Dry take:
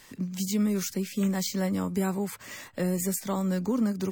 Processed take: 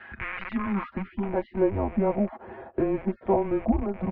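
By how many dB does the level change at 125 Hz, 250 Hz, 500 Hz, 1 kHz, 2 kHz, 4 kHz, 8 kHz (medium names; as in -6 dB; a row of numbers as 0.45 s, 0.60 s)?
-2.0 dB, -0.5 dB, +6.0 dB, +6.5 dB, +3.5 dB, under -10 dB, under -40 dB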